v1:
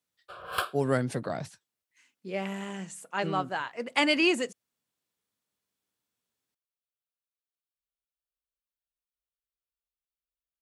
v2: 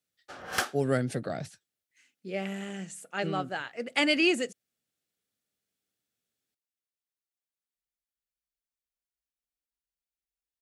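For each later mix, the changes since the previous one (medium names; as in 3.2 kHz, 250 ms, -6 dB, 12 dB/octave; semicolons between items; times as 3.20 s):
background: remove static phaser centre 1.3 kHz, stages 8; master: add peaking EQ 1 kHz -15 dB 0.29 oct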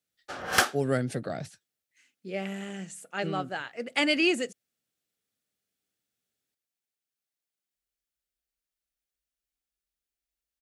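background +6.5 dB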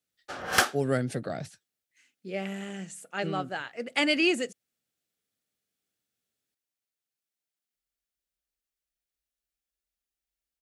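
no change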